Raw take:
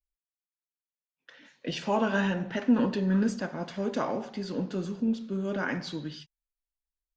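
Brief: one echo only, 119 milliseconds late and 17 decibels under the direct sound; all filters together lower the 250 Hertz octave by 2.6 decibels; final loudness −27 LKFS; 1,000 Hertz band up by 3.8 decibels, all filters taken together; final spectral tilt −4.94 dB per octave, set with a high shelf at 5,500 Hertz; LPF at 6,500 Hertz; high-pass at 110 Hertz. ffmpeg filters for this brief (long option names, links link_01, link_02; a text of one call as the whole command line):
ffmpeg -i in.wav -af "highpass=110,lowpass=6500,equalizer=frequency=250:width_type=o:gain=-3,equalizer=frequency=1000:width_type=o:gain=5,highshelf=frequency=5500:gain=-7.5,aecho=1:1:119:0.141,volume=3.5dB" out.wav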